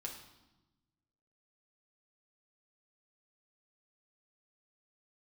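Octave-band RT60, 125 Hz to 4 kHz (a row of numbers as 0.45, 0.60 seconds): 1.7, 1.5, 1.1, 1.0, 0.85, 0.90 seconds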